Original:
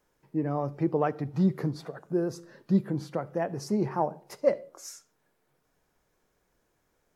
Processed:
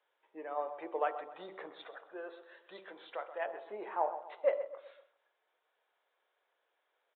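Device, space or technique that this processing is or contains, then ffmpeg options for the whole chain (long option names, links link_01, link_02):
musical greeting card: -filter_complex "[0:a]bandreject=frequency=48.19:width_type=h:width=4,bandreject=frequency=96.38:width_type=h:width=4,bandreject=frequency=144.57:width_type=h:width=4,bandreject=frequency=192.76:width_type=h:width=4,bandreject=frequency=240.95:width_type=h:width=4,bandreject=frequency=289.14:width_type=h:width=4,bandreject=frequency=337.33:width_type=h:width=4,bandreject=frequency=385.52:width_type=h:width=4,bandreject=frequency=433.71:width_type=h:width=4,bandreject=frequency=481.9:width_type=h:width=4,bandreject=frequency=530.09:width_type=h:width=4,bandreject=frequency=578.28:width_type=h:width=4,bandreject=frequency=626.47:width_type=h:width=4,bandreject=frequency=674.66:width_type=h:width=4,bandreject=frequency=722.85:width_type=h:width=4,bandreject=frequency=771.04:width_type=h:width=4,bandreject=frequency=819.23:width_type=h:width=4,bandreject=frequency=867.42:width_type=h:width=4,bandreject=frequency=915.61:width_type=h:width=4,bandreject=frequency=963.8:width_type=h:width=4,bandreject=frequency=1011.99:width_type=h:width=4,bandreject=frequency=1060.18:width_type=h:width=4,bandreject=frequency=1108.37:width_type=h:width=4,bandreject=frequency=1156.56:width_type=h:width=4,bandreject=frequency=1204.75:width_type=h:width=4,bandreject=frequency=1252.94:width_type=h:width=4,bandreject=frequency=1301.13:width_type=h:width=4,bandreject=frequency=1349.32:width_type=h:width=4,bandreject=frequency=1397.51:width_type=h:width=4,aresample=8000,aresample=44100,highpass=frequency=520:width=0.5412,highpass=frequency=520:width=1.3066,equalizer=frequency=3500:width_type=o:width=0.54:gain=5,asettb=1/sr,asplit=3[link_01][link_02][link_03];[link_01]atrim=end=1.744[link_04];[link_02]atrim=start=1.74:end=3.46,asetpts=PTS-STARTPTS,afade=type=in:duration=0.004:curve=qsin,afade=type=out:start_time=1.716:duration=0.004:curve=qsin,tiltshelf=frequency=1200:gain=-5.5[link_05];[link_03]atrim=start=3.456[link_06];[link_04][link_05]acrossfade=duration=0.004:curve1=hsin:curve2=qsin[link_07];[link_07][link_06]acrossfade=duration=0.004:curve1=qsin:curve2=hsin,asplit=2[link_08][link_09];[link_09]adelay=129,lowpass=frequency=2000:poles=1,volume=-11.5dB,asplit=2[link_10][link_11];[link_11]adelay=129,lowpass=frequency=2000:poles=1,volume=0.43,asplit=2[link_12][link_13];[link_13]adelay=129,lowpass=frequency=2000:poles=1,volume=0.43,asplit=2[link_14][link_15];[link_15]adelay=129,lowpass=frequency=2000:poles=1,volume=0.43[link_16];[link_08][link_10][link_12][link_14][link_16]amix=inputs=5:normalize=0,volume=-3dB"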